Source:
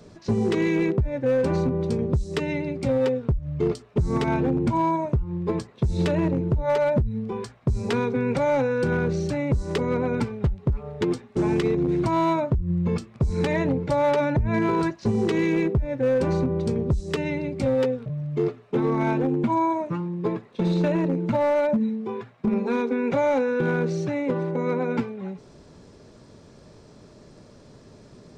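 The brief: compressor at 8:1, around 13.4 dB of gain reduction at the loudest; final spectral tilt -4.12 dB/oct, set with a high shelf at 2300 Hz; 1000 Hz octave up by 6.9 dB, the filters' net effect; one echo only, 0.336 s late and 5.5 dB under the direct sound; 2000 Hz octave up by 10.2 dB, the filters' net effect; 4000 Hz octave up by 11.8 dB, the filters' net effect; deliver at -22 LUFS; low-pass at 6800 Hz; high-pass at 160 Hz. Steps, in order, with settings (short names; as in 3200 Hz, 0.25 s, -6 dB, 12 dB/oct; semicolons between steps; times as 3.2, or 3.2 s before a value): HPF 160 Hz; LPF 6800 Hz; bell 1000 Hz +5 dB; bell 2000 Hz +7 dB; high shelf 2300 Hz +5 dB; bell 4000 Hz +8 dB; compressor 8:1, threshold -28 dBFS; echo 0.336 s -5.5 dB; gain +9 dB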